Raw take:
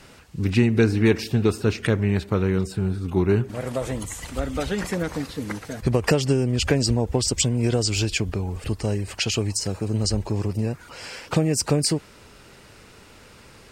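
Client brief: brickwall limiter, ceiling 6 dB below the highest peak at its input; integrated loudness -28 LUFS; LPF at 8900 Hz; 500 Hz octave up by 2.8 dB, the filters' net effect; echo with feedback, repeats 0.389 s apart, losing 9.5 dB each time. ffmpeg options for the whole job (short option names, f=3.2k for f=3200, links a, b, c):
-af "lowpass=8.9k,equalizer=f=500:t=o:g=3.5,alimiter=limit=-11.5dB:level=0:latency=1,aecho=1:1:389|778|1167|1556:0.335|0.111|0.0365|0.012,volume=-4.5dB"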